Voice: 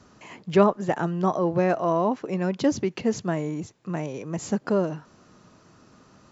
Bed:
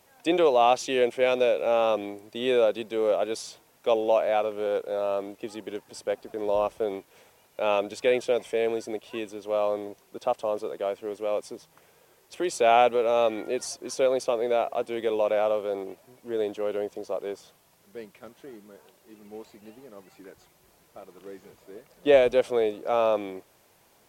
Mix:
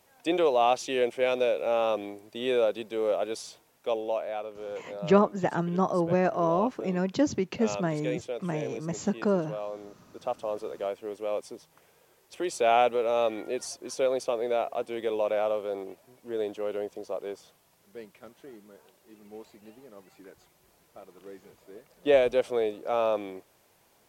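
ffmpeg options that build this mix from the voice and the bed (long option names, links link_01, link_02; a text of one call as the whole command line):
ffmpeg -i stem1.wav -i stem2.wav -filter_complex "[0:a]adelay=4550,volume=-2.5dB[link_01];[1:a]volume=4dB,afade=type=out:start_time=3.49:duration=0.86:silence=0.446684,afade=type=in:start_time=9.73:duration=1:silence=0.446684[link_02];[link_01][link_02]amix=inputs=2:normalize=0" out.wav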